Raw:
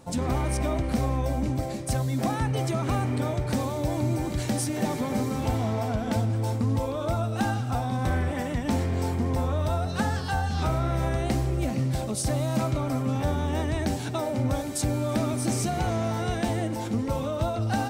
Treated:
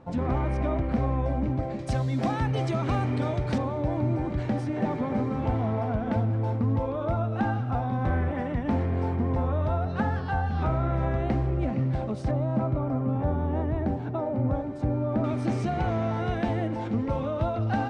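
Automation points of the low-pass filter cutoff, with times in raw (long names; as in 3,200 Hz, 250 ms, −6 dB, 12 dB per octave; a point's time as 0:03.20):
2,000 Hz
from 0:01.79 4,100 Hz
from 0:03.58 1,900 Hz
from 0:12.31 1,100 Hz
from 0:15.24 2,500 Hz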